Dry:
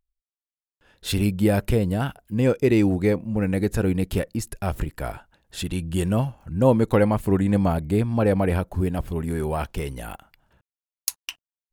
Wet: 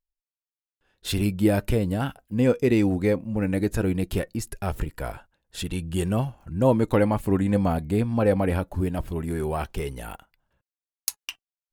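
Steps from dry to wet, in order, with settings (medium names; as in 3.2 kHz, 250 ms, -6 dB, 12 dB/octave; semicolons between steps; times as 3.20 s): gate -45 dBFS, range -9 dB; flange 0.19 Hz, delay 1.8 ms, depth 2.4 ms, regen +76%; trim +3 dB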